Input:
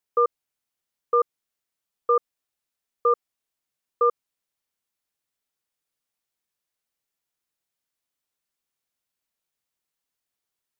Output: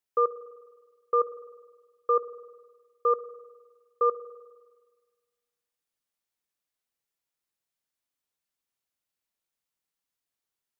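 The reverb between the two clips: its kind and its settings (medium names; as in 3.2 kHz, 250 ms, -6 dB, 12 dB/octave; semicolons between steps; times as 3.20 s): spring tank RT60 1.5 s, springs 50 ms, chirp 60 ms, DRR 14 dB; trim -3.5 dB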